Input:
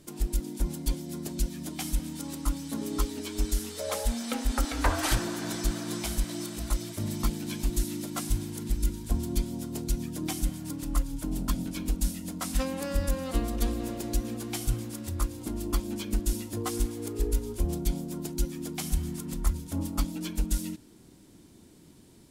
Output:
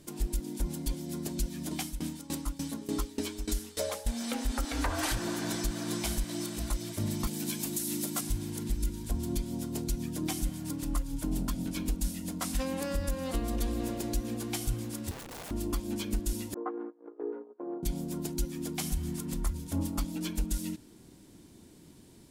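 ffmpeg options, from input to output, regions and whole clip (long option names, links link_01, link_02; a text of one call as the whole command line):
ffmpeg -i in.wav -filter_complex "[0:a]asettb=1/sr,asplit=3[link_01][link_02][link_03];[link_01]atrim=end=1.714[link_04];[link_02]atrim=start=1.71:end=4.11,asetpts=PTS-STARTPTS,afade=type=in:duration=0.004:curve=qsin,afade=type=out:start_time=2.396:duration=0.004:curve=qsin,acontrast=51,aeval=exprs='val(0)*pow(10,-20*if(lt(mod(3.4*n/s,1),2*abs(3.4)/1000),1-mod(3.4*n/s,1)/(2*abs(3.4)/1000),(mod(3.4*n/s,1)-2*abs(3.4)/1000)/(1-2*abs(3.4)/1000))/20)':channel_layout=same[link_05];[link_03]atrim=start=4.106[link_06];[link_04][link_05]acrossfade=duration=0.004:curve1=hsin:curve2=qsin[link_07];[link_07][link_06]acrossfade=duration=0.004:curve1=qsin:curve2=hsin,asettb=1/sr,asplit=3[link_08][link_09][link_10];[link_08]atrim=end=7.274[link_11];[link_09]atrim=start=7.27:end=8.21,asetpts=PTS-STARTPTS,afade=type=in:duration=0.004:curve=qsin,afade=type=out:start_time=0.936:duration=0.004:curve=qsin,highpass=frequency=120:width=0.5412,highpass=frequency=120:width=1.3066,highshelf=frequency=6600:gain=11[link_12];[link_10]atrim=start=8.206[link_13];[link_11][link_12]acrossfade=duration=0.004:curve1=hsin:curve2=qsin[link_14];[link_14][link_13]acrossfade=duration=0.004:curve1=qsin:curve2=hsin,asettb=1/sr,asplit=3[link_15][link_16][link_17];[link_15]atrim=end=15.114[link_18];[link_16]atrim=start=15.11:end=15.51,asetpts=PTS-STARTPTS,afade=type=in:duration=0.004:curve=qsin,afade=type=out:start_time=0.396:duration=0.004:curve=qsin,highshelf=frequency=6400:gain=-10.5,acompressor=threshold=-35dB:ratio=4:attack=3.2:release=140:knee=1:detection=peak,aeval=exprs='(mod(84.1*val(0)+1,2)-1)/84.1':channel_layout=same[link_19];[link_17]atrim=start=15.506[link_20];[link_18][link_19]acrossfade=duration=0.004:curve1=hsin:curve2=qsin[link_21];[link_21][link_20]acrossfade=duration=0.004:curve1=qsin:curve2=hsin,asettb=1/sr,asplit=3[link_22][link_23][link_24];[link_22]atrim=end=16.544[link_25];[link_23]atrim=start=16.54:end=17.83,asetpts=PTS-STARTPTS,afade=type=in:duration=0.004:curve=qsin,afade=type=out:start_time=1.286:duration=0.004:curve=qsin,agate=range=-23dB:threshold=-34dB:ratio=16:release=100:detection=peak,asuperpass=centerf=670:order=8:qfactor=0.57[link_26];[link_24]atrim=start=17.826[link_27];[link_25][link_26]acrossfade=duration=0.004:curve1=hsin:curve2=qsin[link_28];[link_28][link_27]acrossfade=duration=0.004:curve1=qsin:curve2=hsin,bandreject=frequency=1300:width=26,alimiter=limit=-20.5dB:level=0:latency=1:release=154" out.wav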